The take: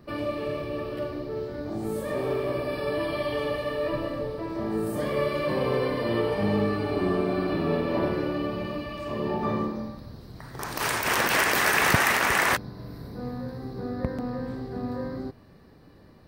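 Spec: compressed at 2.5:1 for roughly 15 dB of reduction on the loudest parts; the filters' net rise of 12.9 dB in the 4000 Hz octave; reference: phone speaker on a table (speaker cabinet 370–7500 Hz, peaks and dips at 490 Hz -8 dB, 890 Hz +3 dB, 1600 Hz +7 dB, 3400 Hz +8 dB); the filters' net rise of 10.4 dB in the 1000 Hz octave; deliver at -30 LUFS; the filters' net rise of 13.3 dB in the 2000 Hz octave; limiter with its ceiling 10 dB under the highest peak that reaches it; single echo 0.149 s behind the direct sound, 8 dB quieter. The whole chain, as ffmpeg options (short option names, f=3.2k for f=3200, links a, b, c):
-af "equalizer=f=1k:t=o:g=8,equalizer=f=2k:t=o:g=6.5,equalizer=f=4k:t=o:g=8,acompressor=threshold=-34dB:ratio=2.5,alimiter=level_in=1dB:limit=-24dB:level=0:latency=1,volume=-1dB,highpass=f=370:w=0.5412,highpass=f=370:w=1.3066,equalizer=f=490:t=q:w=4:g=-8,equalizer=f=890:t=q:w=4:g=3,equalizer=f=1.6k:t=q:w=4:g=7,equalizer=f=3.4k:t=q:w=4:g=8,lowpass=f=7.5k:w=0.5412,lowpass=f=7.5k:w=1.3066,aecho=1:1:149:0.398,volume=3dB"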